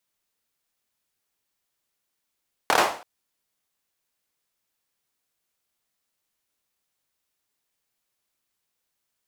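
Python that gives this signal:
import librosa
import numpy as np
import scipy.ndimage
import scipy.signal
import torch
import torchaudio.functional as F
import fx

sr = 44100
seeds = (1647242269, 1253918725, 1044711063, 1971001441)

y = fx.drum_clap(sr, seeds[0], length_s=0.33, bursts=4, spacing_ms=26, hz=740.0, decay_s=0.43)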